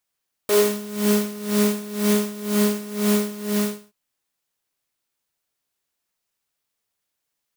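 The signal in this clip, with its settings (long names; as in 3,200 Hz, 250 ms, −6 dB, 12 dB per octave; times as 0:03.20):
subtractive patch with tremolo G#4, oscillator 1 triangle, interval 0 semitones, oscillator 2 level −12.5 dB, sub −4 dB, noise −1 dB, filter highpass, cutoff 120 Hz, Q 2.2, filter envelope 2 octaves, attack 2.8 ms, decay 0.14 s, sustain −7 dB, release 0.43 s, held 3.00 s, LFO 2 Hz, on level 17.5 dB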